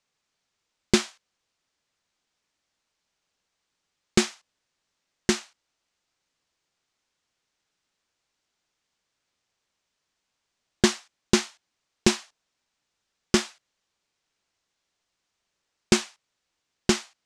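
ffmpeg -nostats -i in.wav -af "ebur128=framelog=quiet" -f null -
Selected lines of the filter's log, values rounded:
Integrated loudness:
  I:         -25.8 LUFS
  Threshold: -37.0 LUFS
Loudness range:
  LRA:         7.4 LU
  Threshold: -51.8 LUFS
  LRA low:   -36.3 LUFS
  LRA high:  -28.9 LUFS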